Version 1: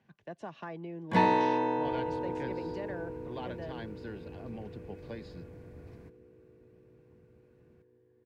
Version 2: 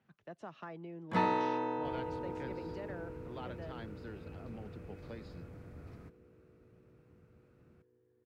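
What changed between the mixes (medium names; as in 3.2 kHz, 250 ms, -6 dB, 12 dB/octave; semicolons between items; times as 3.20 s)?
speech -5.0 dB; first sound -6.0 dB; master: remove Butterworth band-stop 1.3 kHz, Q 6.7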